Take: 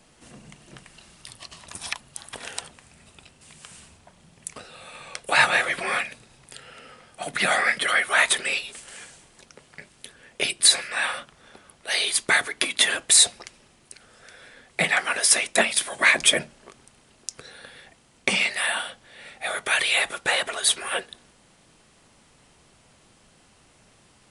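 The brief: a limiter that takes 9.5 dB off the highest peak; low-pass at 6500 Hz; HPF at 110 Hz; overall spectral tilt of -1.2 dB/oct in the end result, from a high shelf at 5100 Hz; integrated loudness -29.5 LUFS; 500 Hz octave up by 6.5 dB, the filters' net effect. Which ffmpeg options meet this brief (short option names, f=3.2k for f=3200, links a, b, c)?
-af "highpass=110,lowpass=6.5k,equalizer=f=500:t=o:g=8.5,highshelf=f=5.1k:g=-8,volume=-4dB,alimiter=limit=-16.5dB:level=0:latency=1"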